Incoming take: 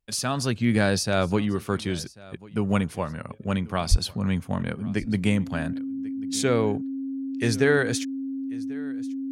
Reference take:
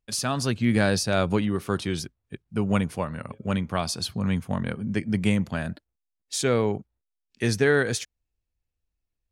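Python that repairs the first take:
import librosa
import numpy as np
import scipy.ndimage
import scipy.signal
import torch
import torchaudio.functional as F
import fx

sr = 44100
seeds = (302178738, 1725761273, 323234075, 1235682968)

y = fx.notch(x, sr, hz=270.0, q=30.0)
y = fx.fix_deplosive(y, sr, at_s=(3.9,))
y = fx.fix_echo_inverse(y, sr, delay_ms=1091, level_db=-22.0)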